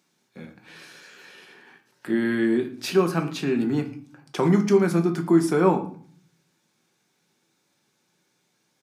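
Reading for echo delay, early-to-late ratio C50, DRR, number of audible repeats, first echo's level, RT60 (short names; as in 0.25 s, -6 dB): 0.113 s, 12.0 dB, 4.0 dB, 1, -21.0 dB, 0.50 s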